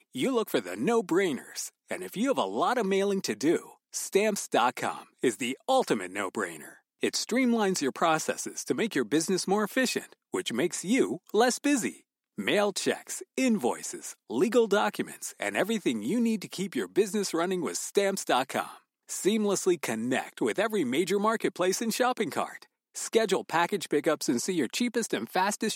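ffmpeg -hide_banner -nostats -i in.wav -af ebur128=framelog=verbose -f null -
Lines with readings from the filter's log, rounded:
Integrated loudness:
  I:         -28.5 LUFS
  Threshold: -38.6 LUFS
Loudness range:
  LRA:         1.3 LU
  Threshold: -48.6 LUFS
  LRA low:   -29.2 LUFS
  LRA high:  -27.9 LUFS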